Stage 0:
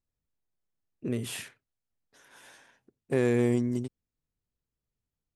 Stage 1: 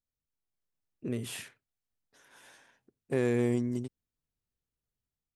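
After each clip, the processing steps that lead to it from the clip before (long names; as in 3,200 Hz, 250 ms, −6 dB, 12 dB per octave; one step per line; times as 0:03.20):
automatic gain control gain up to 4.5 dB
level −7.5 dB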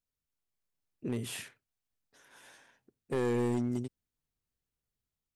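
hard clipping −26 dBFS, distortion −10 dB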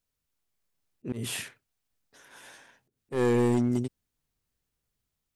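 volume swells 121 ms
level +6.5 dB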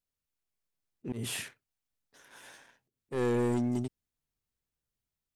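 leveller curve on the samples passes 1
level −5.5 dB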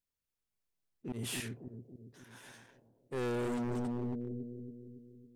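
bucket-brigade delay 278 ms, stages 1,024, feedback 54%, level −3 dB
hard clipping −30.5 dBFS, distortion −9 dB
level −2.5 dB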